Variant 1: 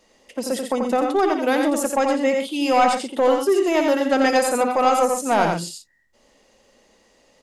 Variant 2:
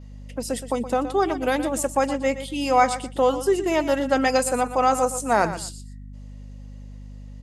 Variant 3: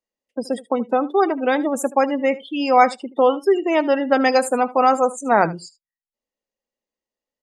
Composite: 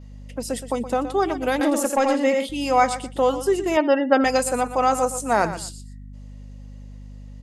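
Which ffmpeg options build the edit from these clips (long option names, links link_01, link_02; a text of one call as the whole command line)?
ffmpeg -i take0.wav -i take1.wav -i take2.wav -filter_complex "[1:a]asplit=3[link_01][link_02][link_03];[link_01]atrim=end=1.612[link_04];[0:a]atrim=start=1.608:end=2.492[link_05];[link_02]atrim=start=2.488:end=3.772[link_06];[2:a]atrim=start=3.768:end=4.242[link_07];[link_03]atrim=start=4.238[link_08];[link_04][link_05]acrossfade=duration=0.004:curve1=hsin:curve2=hsin[link_09];[link_09][link_06]acrossfade=duration=0.004:curve1=hsin:curve2=hsin[link_10];[link_10][link_07]acrossfade=duration=0.004:curve1=hsin:curve2=hsin[link_11];[link_11][link_08]acrossfade=duration=0.004:curve1=hsin:curve2=hsin" out.wav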